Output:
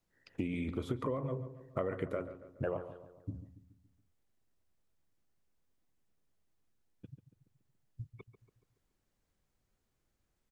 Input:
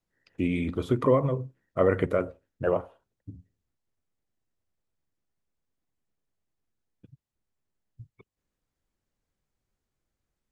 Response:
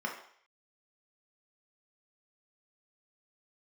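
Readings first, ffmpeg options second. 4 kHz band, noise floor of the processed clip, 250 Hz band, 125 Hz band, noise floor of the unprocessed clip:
can't be measured, −82 dBFS, −10.0 dB, −9.0 dB, below −85 dBFS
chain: -filter_complex "[0:a]acompressor=threshold=-35dB:ratio=8,asplit=2[link_01][link_02];[link_02]adelay=141,lowpass=frequency=2000:poles=1,volume=-12dB,asplit=2[link_03][link_04];[link_04]adelay=141,lowpass=frequency=2000:poles=1,volume=0.52,asplit=2[link_05][link_06];[link_06]adelay=141,lowpass=frequency=2000:poles=1,volume=0.52,asplit=2[link_07][link_08];[link_08]adelay=141,lowpass=frequency=2000:poles=1,volume=0.52,asplit=2[link_09][link_10];[link_10]adelay=141,lowpass=frequency=2000:poles=1,volume=0.52[link_11];[link_01][link_03][link_05][link_07][link_09][link_11]amix=inputs=6:normalize=0,volume=2dB"

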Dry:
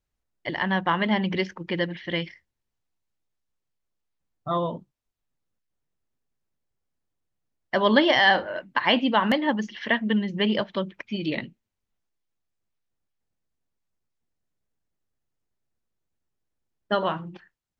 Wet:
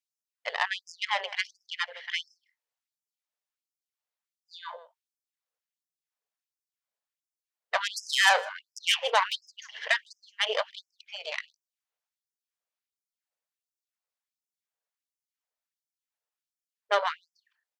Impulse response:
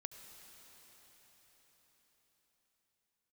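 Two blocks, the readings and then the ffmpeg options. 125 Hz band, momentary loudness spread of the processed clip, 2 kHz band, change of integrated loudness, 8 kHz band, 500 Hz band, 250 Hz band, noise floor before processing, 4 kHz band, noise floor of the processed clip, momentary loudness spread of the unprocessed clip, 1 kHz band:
below −40 dB, 20 LU, −3.0 dB, −4.0 dB, can't be measured, −8.5 dB, below −40 dB, −82 dBFS, −1.5 dB, below −85 dBFS, 14 LU, −4.5 dB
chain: -filter_complex "[0:a]aeval=exprs='0.501*(cos(1*acos(clip(val(0)/0.501,-1,1)))-cos(1*PI/2))+0.1*(cos(6*acos(clip(val(0)/0.501,-1,1)))-cos(6*PI/2))':channel_layout=same,asplit=2[link_01][link_02];[link_02]adelay=157.4,volume=-21dB,highshelf=frequency=4000:gain=-3.54[link_03];[link_01][link_03]amix=inputs=2:normalize=0,afftfilt=real='re*gte(b*sr/1024,400*pow(5000/400,0.5+0.5*sin(2*PI*1.4*pts/sr)))':imag='im*gte(b*sr/1024,400*pow(5000/400,0.5+0.5*sin(2*PI*1.4*pts/sr)))':win_size=1024:overlap=0.75,volume=-2.5dB"

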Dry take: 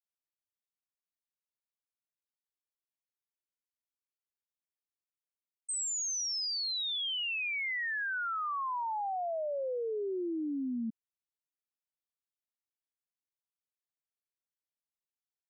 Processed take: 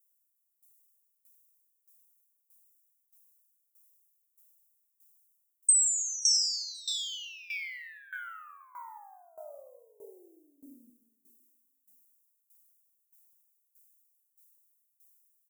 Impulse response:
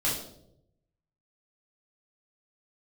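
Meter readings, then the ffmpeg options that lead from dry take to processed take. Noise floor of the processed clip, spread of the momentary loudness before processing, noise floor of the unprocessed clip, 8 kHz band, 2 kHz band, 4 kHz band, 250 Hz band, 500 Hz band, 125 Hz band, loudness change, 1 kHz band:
−78 dBFS, 4 LU, below −85 dBFS, +8.5 dB, −7.5 dB, +1.5 dB, below −20 dB, −16.0 dB, can't be measured, +5.5 dB, −13.5 dB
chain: -filter_complex "[0:a]asplit=2[link_01][link_02];[1:a]atrim=start_sample=2205,adelay=87[link_03];[link_02][link_03]afir=irnorm=-1:irlink=0,volume=-13.5dB[link_04];[link_01][link_04]amix=inputs=2:normalize=0,aexciter=amount=10.1:drive=2.7:freq=5700,aderivative,aecho=1:1:528|1056:0.0708|0.0248,dynaudnorm=framelen=320:gausssize=3:maxgain=8.5dB,equalizer=frequency=580:width_type=o:width=0.38:gain=3,acompressor=threshold=-18dB:ratio=6,aeval=exprs='val(0)*pow(10,-18*if(lt(mod(1.6*n/s,1),2*abs(1.6)/1000),1-mod(1.6*n/s,1)/(2*abs(1.6)/1000),(mod(1.6*n/s,1)-2*abs(1.6)/1000)/(1-2*abs(1.6)/1000))/20)':channel_layout=same"

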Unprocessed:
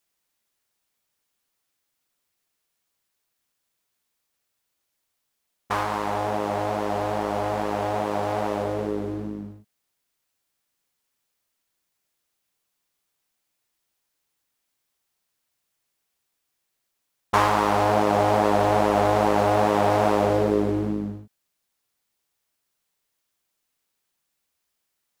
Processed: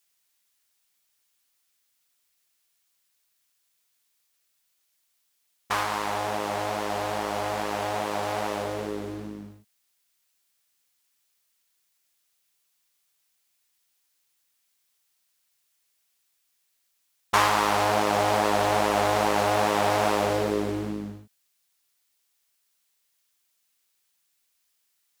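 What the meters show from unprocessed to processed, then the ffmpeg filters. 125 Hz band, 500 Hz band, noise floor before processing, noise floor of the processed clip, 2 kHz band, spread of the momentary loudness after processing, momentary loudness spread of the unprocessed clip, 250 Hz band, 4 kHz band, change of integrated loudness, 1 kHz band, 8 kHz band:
−6.0 dB, −4.0 dB, −78 dBFS, −73 dBFS, +2.0 dB, 11 LU, 10 LU, −5.5 dB, +4.5 dB, −2.5 dB, −2.0 dB, +5.5 dB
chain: -af "tiltshelf=frequency=1300:gain=-6"

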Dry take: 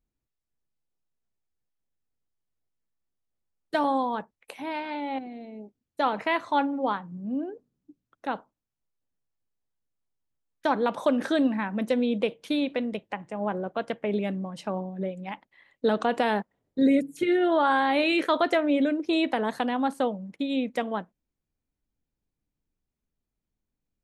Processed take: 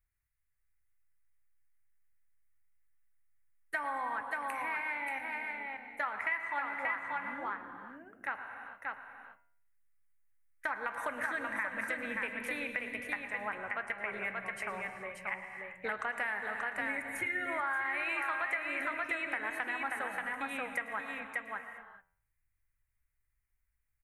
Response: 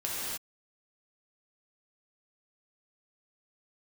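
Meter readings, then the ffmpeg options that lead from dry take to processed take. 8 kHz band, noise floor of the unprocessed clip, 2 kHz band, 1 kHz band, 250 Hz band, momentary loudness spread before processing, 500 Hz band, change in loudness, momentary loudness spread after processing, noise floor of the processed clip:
can't be measured, below −85 dBFS, +1.5 dB, −9.0 dB, −21.5 dB, 13 LU, −16.0 dB, −9.0 dB, 9 LU, −80 dBFS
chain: -filter_complex "[0:a]firequalizer=gain_entry='entry(110,0);entry(170,-21);entry(1200,1);entry(2000,11);entry(3400,-16);entry(9400,4)':delay=0.05:min_phase=1,aecho=1:1:104|582:0.141|0.562,asplit=2[link_01][link_02];[1:a]atrim=start_sample=2205,lowshelf=frequency=150:gain=10.5,adelay=116[link_03];[link_02][link_03]afir=irnorm=-1:irlink=0,volume=-16dB[link_04];[link_01][link_04]amix=inputs=2:normalize=0,acompressor=threshold=-32dB:ratio=5,bandreject=frequency=87.94:width_type=h:width=4,bandreject=frequency=175.88:width_type=h:width=4,bandreject=frequency=263.82:width_type=h:width=4,bandreject=frequency=351.76:width_type=h:width=4,bandreject=frequency=439.7:width_type=h:width=4,bandreject=frequency=527.64:width_type=h:width=4,bandreject=frequency=615.58:width_type=h:width=4,bandreject=frequency=703.52:width_type=h:width=4,bandreject=frequency=791.46:width_type=h:width=4,bandreject=frequency=879.4:width_type=h:width=4,bandreject=frequency=967.34:width_type=h:width=4,bandreject=frequency=1055.28:width_type=h:width=4,bandreject=frequency=1143.22:width_type=h:width=4,bandreject=frequency=1231.16:width_type=h:width=4,bandreject=frequency=1319.1:width_type=h:width=4,bandreject=frequency=1407.04:width_type=h:width=4,bandreject=frequency=1494.98:width_type=h:width=4,bandreject=frequency=1582.92:width_type=h:width=4,bandreject=frequency=1670.86:width_type=h:width=4,bandreject=frequency=1758.8:width_type=h:width=4,bandreject=frequency=1846.74:width_type=h:width=4,bandreject=frequency=1934.68:width_type=h:width=4,bandreject=frequency=2022.62:width_type=h:width=4,bandreject=frequency=2110.56:width_type=h:width=4,bandreject=frequency=2198.5:width_type=h:width=4,bandreject=frequency=2286.44:width_type=h:width=4,bandreject=frequency=2374.38:width_type=h:width=4,bandreject=frequency=2462.32:width_type=h:width=4,bandreject=frequency=2550.26:width_type=h:width=4,bandreject=frequency=2638.2:width_type=h:width=4,bandreject=frequency=2726.14:width_type=h:width=4,bandreject=frequency=2814.08:width_type=h:width=4,bandreject=frequency=2902.02:width_type=h:width=4,bandreject=frequency=2989.96:width_type=h:width=4,bandreject=frequency=3077.9:width_type=h:width=4,bandreject=frequency=3165.84:width_type=h:width=4"

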